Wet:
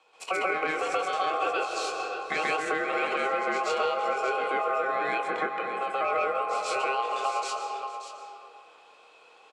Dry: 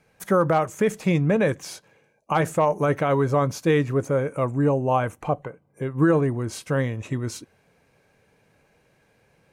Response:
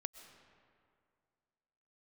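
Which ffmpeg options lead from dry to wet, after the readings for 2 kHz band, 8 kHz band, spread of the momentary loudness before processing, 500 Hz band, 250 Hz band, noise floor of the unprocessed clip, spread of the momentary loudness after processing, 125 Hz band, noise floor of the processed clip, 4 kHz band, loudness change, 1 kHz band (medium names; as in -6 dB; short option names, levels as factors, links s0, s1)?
+2.5 dB, -3.0 dB, 11 LU, -6.5 dB, -17.0 dB, -64 dBFS, 6 LU, under -30 dB, -56 dBFS, +4.0 dB, -5.0 dB, +1.0 dB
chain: -filter_complex "[0:a]asplit=2[s0][s1];[s1]adelay=24,volume=0.355[s2];[s0][s2]amix=inputs=2:normalize=0,aeval=exprs='val(0)*sin(2*PI*940*n/s)':c=same,highpass=390,equalizer=f=470:t=q:w=4:g=7,equalizer=f=890:t=q:w=4:g=6,equalizer=f=1700:t=q:w=4:g=-6,equalizer=f=2500:t=q:w=4:g=10,equalizer=f=4200:t=q:w=4:g=8,equalizer=f=7600:t=q:w=4:g=3,lowpass=f=8500:w=0.5412,lowpass=f=8500:w=1.3066,acontrast=43,asplit=2[s3][s4];[1:a]atrim=start_sample=2205,adelay=132[s5];[s4][s5]afir=irnorm=-1:irlink=0,volume=2.82[s6];[s3][s6]amix=inputs=2:normalize=0,acompressor=threshold=0.1:ratio=4,aecho=1:1:580:0.316,volume=0.447"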